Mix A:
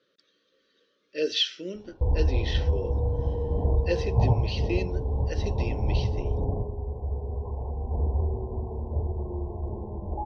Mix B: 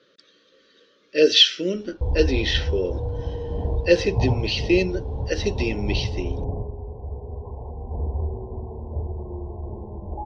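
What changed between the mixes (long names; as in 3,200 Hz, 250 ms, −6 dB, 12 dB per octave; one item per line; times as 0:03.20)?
speech +11.0 dB
second sound −9.5 dB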